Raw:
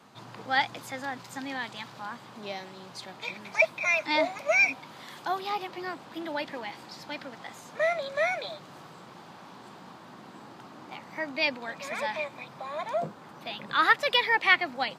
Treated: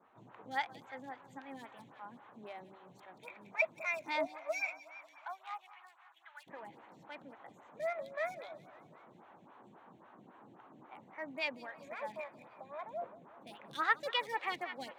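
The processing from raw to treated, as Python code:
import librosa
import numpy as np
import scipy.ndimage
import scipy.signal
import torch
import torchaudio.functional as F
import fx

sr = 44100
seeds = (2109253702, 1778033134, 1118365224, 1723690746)

y = fx.wiener(x, sr, points=9)
y = fx.highpass(y, sr, hz=fx.line((4.26, 510.0), (6.46, 1400.0)), slope=24, at=(4.26, 6.46), fade=0.02)
y = fx.echo_feedback(y, sr, ms=181, feedback_pct=60, wet_db=-17.0)
y = fx.stagger_phaser(y, sr, hz=3.7)
y = y * 10.0 ** (-8.0 / 20.0)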